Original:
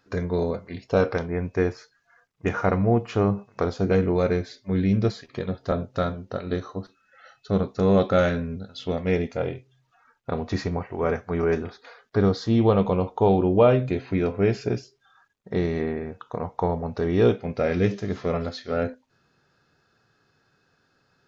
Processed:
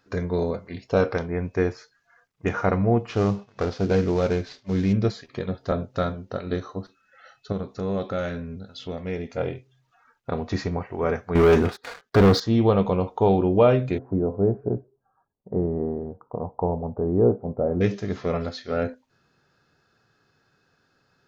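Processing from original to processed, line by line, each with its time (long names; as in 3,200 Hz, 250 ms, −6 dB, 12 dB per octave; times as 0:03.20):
0:03.09–0:04.93: variable-slope delta modulation 32 kbit/s
0:07.52–0:09.37: downward compressor 1.5 to 1, threshold −37 dBFS
0:11.35–0:12.40: leveller curve on the samples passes 3
0:13.98–0:17.81: inverse Chebyshev low-pass filter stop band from 3,100 Hz, stop band 60 dB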